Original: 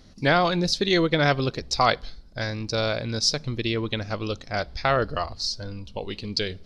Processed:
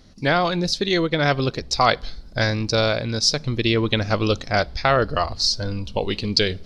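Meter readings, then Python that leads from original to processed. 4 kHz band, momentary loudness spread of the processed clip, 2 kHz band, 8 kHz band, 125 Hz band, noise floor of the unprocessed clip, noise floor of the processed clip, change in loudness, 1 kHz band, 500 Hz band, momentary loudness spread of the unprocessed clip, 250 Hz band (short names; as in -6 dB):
+4.5 dB, 6 LU, +3.5 dB, +4.0 dB, +4.5 dB, -48 dBFS, -42 dBFS, +3.5 dB, +3.0 dB, +3.5 dB, 11 LU, +3.5 dB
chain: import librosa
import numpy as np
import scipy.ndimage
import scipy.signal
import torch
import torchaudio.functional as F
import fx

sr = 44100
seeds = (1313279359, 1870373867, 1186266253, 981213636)

y = fx.rider(x, sr, range_db=5, speed_s=0.5)
y = y * librosa.db_to_amplitude(4.0)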